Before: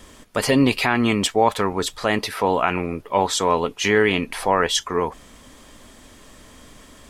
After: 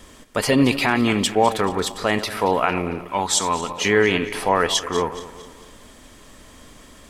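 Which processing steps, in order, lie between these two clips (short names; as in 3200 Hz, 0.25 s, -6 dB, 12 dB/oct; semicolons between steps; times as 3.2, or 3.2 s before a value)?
regenerating reverse delay 0.113 s, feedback 64%, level -13.5 dB; 3.08–3.7 graphic EQ 125/500/8000 Hz -5/-9/+7 dB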